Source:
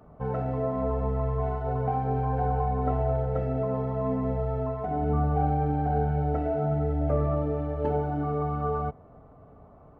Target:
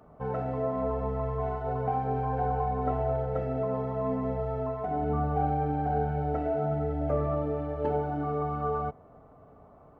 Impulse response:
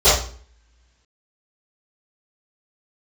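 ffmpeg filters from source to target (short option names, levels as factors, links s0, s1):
-af "lowshelf=f=200:g=-6.5"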